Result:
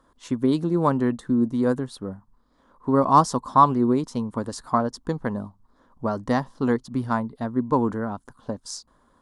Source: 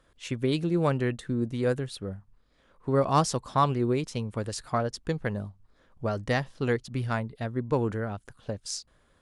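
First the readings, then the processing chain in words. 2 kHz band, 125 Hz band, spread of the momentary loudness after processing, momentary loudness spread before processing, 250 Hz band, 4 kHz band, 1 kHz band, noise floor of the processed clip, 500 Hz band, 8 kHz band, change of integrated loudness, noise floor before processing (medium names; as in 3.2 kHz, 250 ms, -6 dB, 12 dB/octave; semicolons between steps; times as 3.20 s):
-1.0 dB, 0.0 dB, 16 LU, 12 LU, +7.5 dB, -2.0 dB, +8.5 dB, -62 dBFS, +2.5 dB, -0.5 dB, +5.5 dB, -65 dBFS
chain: fifteen-band graphic EQ 100 Hz -4 dB, 250 Hz +10 dB, 1 kHz +12 dB, 2.5 kHz -11 dB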